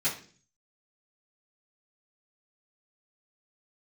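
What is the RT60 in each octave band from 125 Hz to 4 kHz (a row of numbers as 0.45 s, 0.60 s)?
0.75 s, 0.60 s, 0.50 s, 0.35 s, 0.40 s, 0.50 s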